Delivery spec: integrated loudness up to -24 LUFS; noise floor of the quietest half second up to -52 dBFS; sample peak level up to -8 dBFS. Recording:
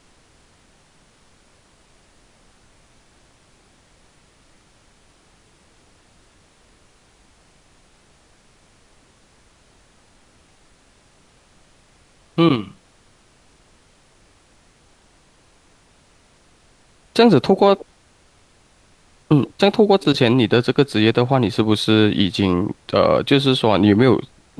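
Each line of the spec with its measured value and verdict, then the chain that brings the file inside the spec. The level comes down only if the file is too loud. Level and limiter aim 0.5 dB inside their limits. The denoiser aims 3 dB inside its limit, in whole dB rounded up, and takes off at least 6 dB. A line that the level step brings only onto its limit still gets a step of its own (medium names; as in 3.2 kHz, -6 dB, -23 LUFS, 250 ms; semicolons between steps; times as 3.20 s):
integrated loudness -16.5 LUFS: fail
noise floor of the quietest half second -55 dBFS: pass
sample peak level -2.0 dBFS: fail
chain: trim -8 dB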